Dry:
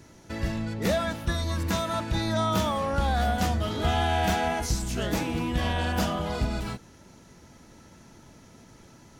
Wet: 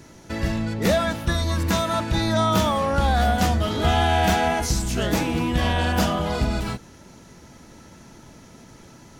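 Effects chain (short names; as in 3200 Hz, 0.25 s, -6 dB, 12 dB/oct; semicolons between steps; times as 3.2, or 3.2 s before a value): notches 50/100 Hz; gain +5.5 dB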